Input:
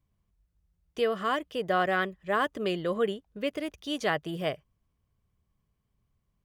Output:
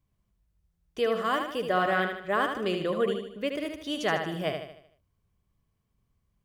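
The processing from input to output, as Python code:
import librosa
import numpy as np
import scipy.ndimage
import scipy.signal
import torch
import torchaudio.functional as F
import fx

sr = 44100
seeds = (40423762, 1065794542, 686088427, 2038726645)

y = fx.high_shelf(x, sr, hz=10000.0, db=7.5, at=(1.15, 1.67))
y = fx.echo_feedback(y, sr, ms=76, feedback_pct=46, wet_db=-6.0)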